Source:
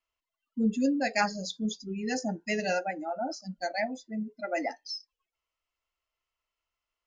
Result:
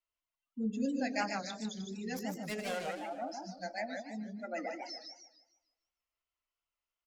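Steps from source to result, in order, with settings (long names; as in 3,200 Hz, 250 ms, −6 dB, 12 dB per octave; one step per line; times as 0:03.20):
0:02.14–0:02.81: phase distortion by the signal itself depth 0.17 ms
single-tap delay 121 ms −13.5 dB
feedback echo with a swinging delay time 152 ms, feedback 37%, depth 207 cents, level −4.5 dB
level −8.5 dB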